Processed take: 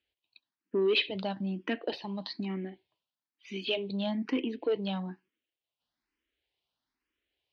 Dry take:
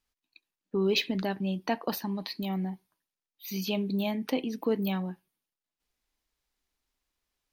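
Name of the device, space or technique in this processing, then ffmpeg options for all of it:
barber-pole phaser into a guitar amplifier: -filter_complex "[0:a]asplit=2[a][b];[b]afreqshift=1.1[c];[a][c]amix=inputs=2:normalize=1,asoftclip=type=tanh:threshold=-24.5dB,highpass=87,equalizer=f=170:t=q:w=4:g=-8,equalizer=f=330:t=q:w=4:g=3,equalizer=f=830:t=q:w=4:g=-3,equalizer=f=1.2k:t=q:w=4:g=-4,equalizer=f=3k:t=q:w=4:g=5,lowpass=f=4.3k:w=0.5412,lowpass=f=4.3k:w=1.3066,volume=3dB"

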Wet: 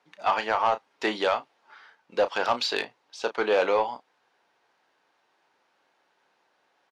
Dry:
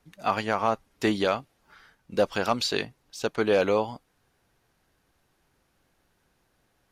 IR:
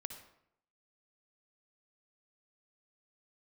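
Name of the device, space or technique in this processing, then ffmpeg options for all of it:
intercom: -filter_complex "[0:a]highpass=470,lowpass=4.5k,equalizer=f=900:t=o:w=0.34:g=5,asoftclip=type=tanh:threshold=-16dB,asplit=2[a][b];[b]adelay=33,volume=-11.5dB[c];[a][c]amix=inputs=2:normalize=0,volume=3dB"

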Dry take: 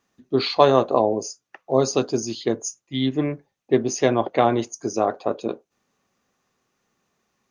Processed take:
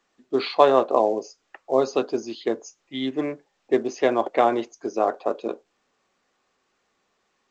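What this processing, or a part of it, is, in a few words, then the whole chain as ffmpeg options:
telephone: -af "highpass=310,lowpass=3.1k" -ar 16000 -c:a pcm_alaw

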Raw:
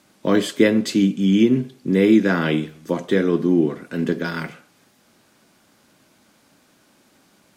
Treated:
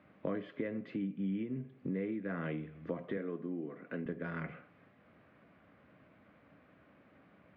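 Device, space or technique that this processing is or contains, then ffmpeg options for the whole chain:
bass amplifier: -filter_complex "[0:a]acompressor=threshold=-32dB:ratio=5,highpass=61,equalizer=f=74:t=q:w=4:g=7,equalizer=f=230:t=q:w=4:g=-5,equalizer=f=360:t=q:w=4:g=-7,equalizer=f=880:t=q:w=4:g=-9,equalizer=f=1.5k:t=q:w=4:g=-5,lowpass=f=2.1k:w=0.5412,lowpass=f=2.1k:w=1.3066,asettb=1/sr,asplit=3[a][b][c];[a]atrim=end=3.174[d];[b]atrim=start=3.17:end=4.06,asetpts=PTS-STARTPTS,afade=t=in:d=0.004:c=qsin,afade=t=out:st=0.886:d=0.004:c=qsin,highpass=200[e];[c]atrim=start=4.056[f];[d][e]acrossfade=d=0.004:c1=hsin:c2=qsin[g];[g][f]acrossfade=d=0.004:c1=qsin:c2=hsin,volume=-1dB"

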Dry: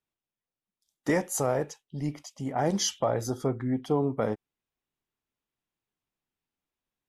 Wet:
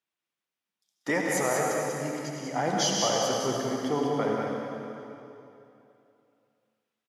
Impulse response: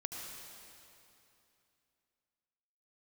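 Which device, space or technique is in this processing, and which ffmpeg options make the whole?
PA in a hall: -filter_complex "[0:a]highpass=150,equalizer=f=2.3k:t=o:w=3:g=8,aecho=1:1:190:0.531[a];[1:a]atrim=start_sample=2205[b];[a][b]afir=irnorm=-1:irlink=0,volume=-1.5dB"

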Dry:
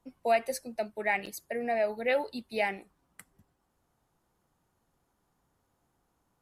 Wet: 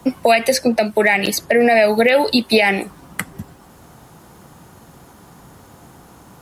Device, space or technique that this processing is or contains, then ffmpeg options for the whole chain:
mastering chain: -filter_complex "[0:a]highpass=55,equalizer=f=170:t=o:w=1.3:g=3.5,acrossover=split=310|2200|4500[a][b][c][d];[a]acompressor=threshold=-52dB:ratio=4[e];[b]acompressor=threshold=-39dB:ratio=4[f];[c]acompressor=threshold=-39dB:ratio=4[g];[d]acompressor=threshold=-58dB:ratio=4[h];[e][f][g][h]amix=inputs=4:normalize=0,acompressor=threshold=-40dB:ratio=2.5,asoftclip=type=hard:threshold=-29.5dB,alimiter=level_in=33.5dB:limit=-1dB:release=50:level=0:latency=1,volume=-3dB"

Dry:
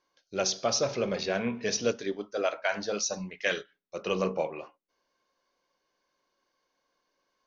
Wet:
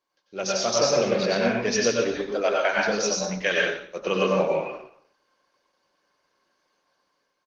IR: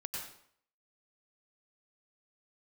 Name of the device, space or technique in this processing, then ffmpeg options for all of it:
far-field microphone of a smart speaker: -filter_complex "[0:a]aecho=1:1:120:0.126[a];[1:a]atrim=start_sample=2205[b];[a][b]afir=irnorm=-1:irlink=0,highpass=150,dynaudnorm=f=120:g=9:m=8dB" -ar 48000 -c:a libopus -b:a 20k

